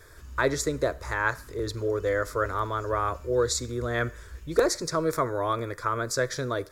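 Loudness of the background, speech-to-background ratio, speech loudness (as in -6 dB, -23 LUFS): -46.5 LUFS, 18.5 dB, -28.0 LUFS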